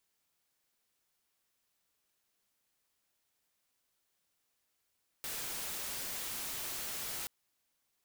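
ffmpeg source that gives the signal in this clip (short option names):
-f lavfi -i "anoisesrc=c=white:a=0.0173:d=2.03:r=44100:seed=1"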